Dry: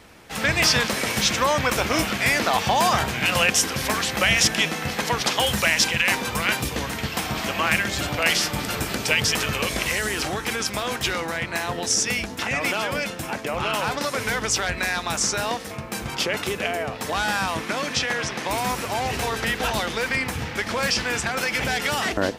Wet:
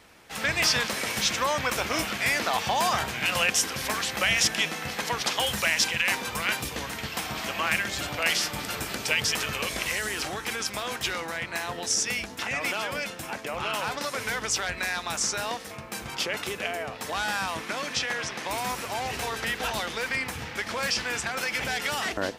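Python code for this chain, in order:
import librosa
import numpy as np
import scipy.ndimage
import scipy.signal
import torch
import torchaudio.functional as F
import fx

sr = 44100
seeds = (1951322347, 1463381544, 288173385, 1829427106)

y = fx.low_shelf(x, sr, hz=470.0, db=-5.5)
y = y * librosa.db_to_amplitude(-4.0)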